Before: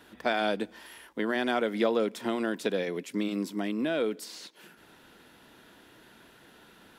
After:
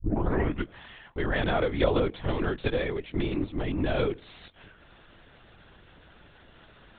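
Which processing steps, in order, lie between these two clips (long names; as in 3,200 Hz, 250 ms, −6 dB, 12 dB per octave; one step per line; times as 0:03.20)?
turntable start at the beginning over 0.74 s
linear-prediction vocoder at 8 kHz whisper
level +2 dB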